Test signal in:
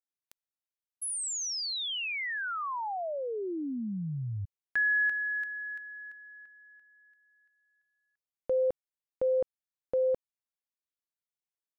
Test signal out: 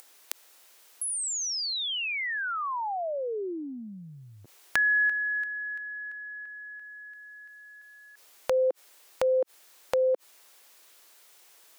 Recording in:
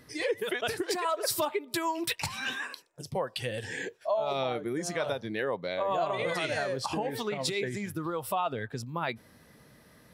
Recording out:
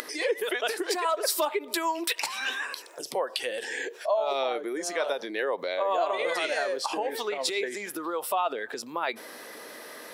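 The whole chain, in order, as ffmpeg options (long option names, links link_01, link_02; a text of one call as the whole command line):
ffmpeg -i in.wav -af "highpass=frequency=340:width=0.5412,highpass=frequency=340:width=1.3066,acompressor=mode=upward:threshold=-39dB:ratio=2.5:attack=27:release=33:knee=2.83:detection=peak,volume=3dB" out.wav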